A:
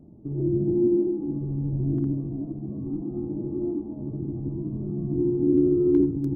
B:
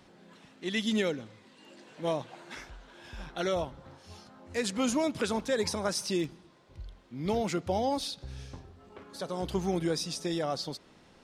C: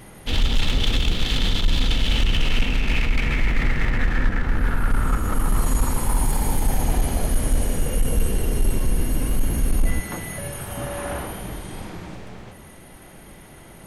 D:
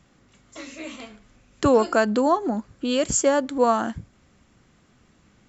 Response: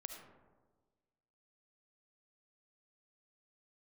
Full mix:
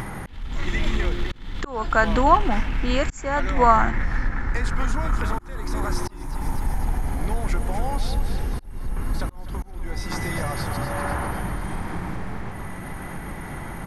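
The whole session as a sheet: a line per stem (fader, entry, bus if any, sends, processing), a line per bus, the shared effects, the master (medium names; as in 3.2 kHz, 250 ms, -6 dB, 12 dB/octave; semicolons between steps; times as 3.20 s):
-14.0 dB, 0.20 s, no send, no echo send, none
+1.5 dB, 0.00 s, no send, echo send -9 dB, compression, threshold -34 dBFS, peak gain reduction 9.5 dB
-3.5 dB, 0.00 s, no send, echo send -11 dB, bass shelf 410 Hz +11 dB; compression 2.5:1, threshold -22 dBFS, peak gain reduction 13 dB
-2.5 dB, 0.00 s, no send, no echo send, none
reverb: none
echo: feedback delay 249 ms, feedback 56%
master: high-order bell 1.3 kHz +10 dB; upward compressor, threshold -25 dBFS; slow attack 454 ms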